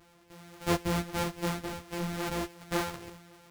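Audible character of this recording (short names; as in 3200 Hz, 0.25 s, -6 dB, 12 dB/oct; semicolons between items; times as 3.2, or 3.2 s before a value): a buzz of ramps at a fixed pitch in blocks of 256 samples; a shimmering, thickened sound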